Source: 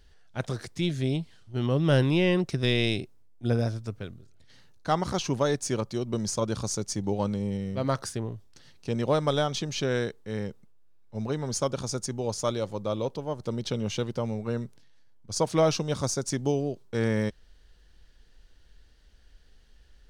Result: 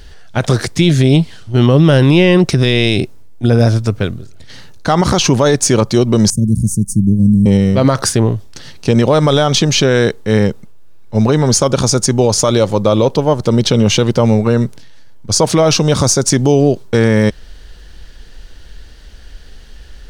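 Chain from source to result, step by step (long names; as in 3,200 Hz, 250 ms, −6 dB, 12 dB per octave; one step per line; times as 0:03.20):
0:06.30–0:07.46: elliptic band-stop filter 220–9,500 Hz, stop band 80 dB
boost into a limiter +22 dB
level −1 dB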